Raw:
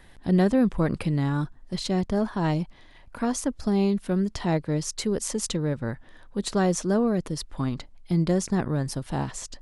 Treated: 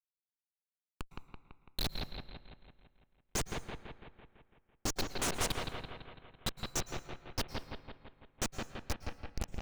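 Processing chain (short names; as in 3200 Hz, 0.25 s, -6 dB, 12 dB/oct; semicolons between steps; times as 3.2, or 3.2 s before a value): spectral gate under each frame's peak -10 dB strong; Chebyshev high-pass 1100 Hz, order 6; high shelf 3300 Hz +8.5 dB; notch 8000 Hz, Q 13; AGC gain up to 5.5 dB; Schmitt trigger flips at -21.5 dBFS; analogue delay 0.167 s, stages 4096, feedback 59%, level -3.5 dB; plate-style reverb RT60 1 s, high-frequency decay 0.65×, pre-delay 0.1 s, DRR 13.5 dB; Doppler distortion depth 0.37 ms; gain +2.5 dB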